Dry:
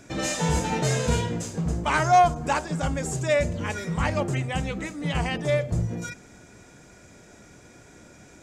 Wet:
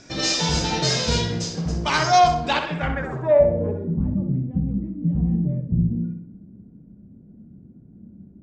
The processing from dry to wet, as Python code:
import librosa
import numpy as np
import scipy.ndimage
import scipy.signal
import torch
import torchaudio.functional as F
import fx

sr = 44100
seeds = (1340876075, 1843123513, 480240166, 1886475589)

y = fx.dynamic_eq(x, sr, hz=3900.0, q=1.6, threshold_db=-48.0, ratio=4.0, max_db=6)
y = fx.filter_sweep_lowpass(y, sr, from_hz=5200.0, to_hz=210.0, start_s=2.34, end_s=4.05, q=3.7)
y = fx.echo_filtered(y, sr, ms=64, feedback_pct=51, hz=3400.0, wet_db=-6.0)